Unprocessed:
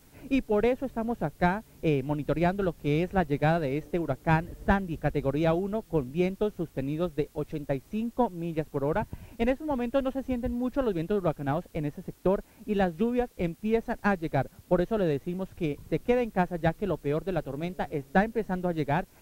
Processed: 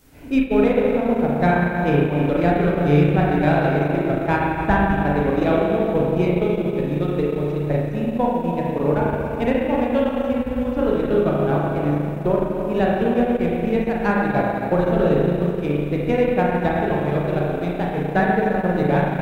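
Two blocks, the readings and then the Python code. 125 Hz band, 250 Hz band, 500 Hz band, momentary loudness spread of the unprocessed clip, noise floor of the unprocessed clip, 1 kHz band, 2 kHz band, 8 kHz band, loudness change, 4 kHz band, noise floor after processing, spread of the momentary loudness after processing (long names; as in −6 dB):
+9.5 dB, +9.5 dB, +9.0 dB, 6 LU, −57 dBFS, +9.0 dB, +8.5 dB, can't be measured, +9.0 dB, +7.0 dB, −27 dBFS, 5 LU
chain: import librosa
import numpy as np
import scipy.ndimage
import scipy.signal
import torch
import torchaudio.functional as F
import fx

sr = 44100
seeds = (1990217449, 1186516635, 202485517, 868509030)

y = fx.rev_spring(x, sr, rt60_s=2.8, pass_ms=(34, 41), chirp_ms=25, drr_db=-5.5)
y = fx.transient(y, sr, attack_db=1, sustain_db=-8)
y = y * librosa.db_to_amplitude(2.5)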